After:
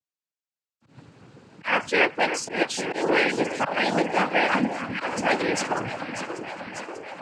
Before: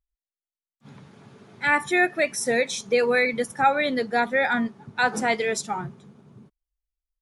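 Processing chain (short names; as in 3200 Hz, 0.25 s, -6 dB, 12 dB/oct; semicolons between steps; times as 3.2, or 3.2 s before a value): echo with dull and thin repeats by turns 0.296 s, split 1100 Hz, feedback 83%, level -8.5 dB; auto swell 0.135 s; noise vocoder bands 8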